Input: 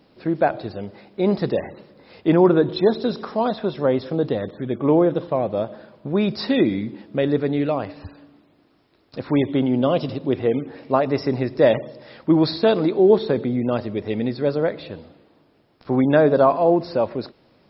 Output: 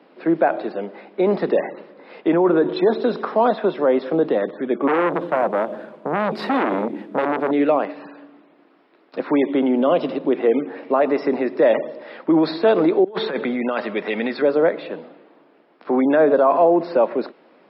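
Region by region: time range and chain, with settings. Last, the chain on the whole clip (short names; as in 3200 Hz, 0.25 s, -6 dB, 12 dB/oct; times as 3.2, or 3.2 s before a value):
4.87–7.51 CVSD 64 kbps + low shelf 230 Hz +11.5 dB + core saturation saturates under 1500 Hz
13.04–14.42 EQ curve 160 Hz 0 dB, 330 Hz -7 dB, 1500 Hz +6 dB + negative-ratio compressor -25 dBFS, ratio -0.5
whole clip: limiter -13 dBFS; Chebyshev high-pass 160 Hz, order 5; three-band isolator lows -15 dB, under 270 Hz, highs -22 dB, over 2900 Hz; gain +8 dB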